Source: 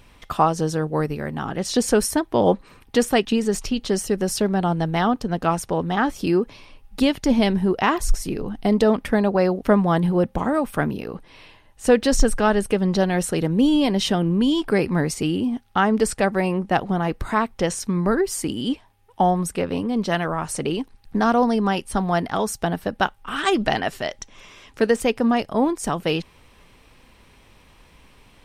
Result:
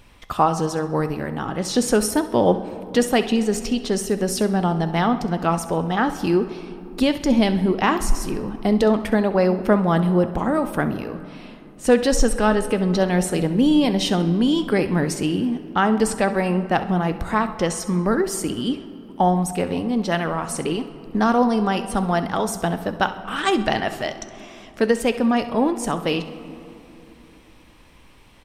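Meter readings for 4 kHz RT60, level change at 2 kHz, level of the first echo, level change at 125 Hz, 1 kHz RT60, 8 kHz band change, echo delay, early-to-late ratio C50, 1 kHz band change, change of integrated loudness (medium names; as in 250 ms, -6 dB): 1.4 s, +0.5 dB, -15.0 dB, +1.0 dB, 2.8 s, +0.5 dB, 66 ms, 11.0 dB, +0.5 dB, +0.5 dB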